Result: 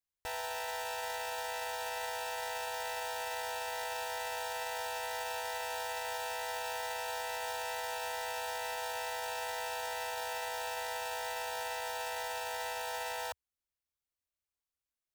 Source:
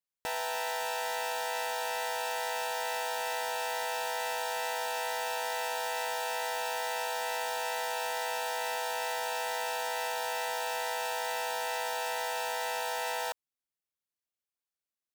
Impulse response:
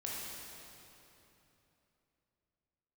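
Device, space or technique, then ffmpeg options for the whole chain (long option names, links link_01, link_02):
car stereo with a boomy subwoofer: -af "lowshelf=frequency=110:width_type=q:width=1.5:gain=10.5,alimiter=level_in=3.5dB:limit=-24dB:level=0:latency=1:release=10,volume=-3.5dB,volume=-2.5dB"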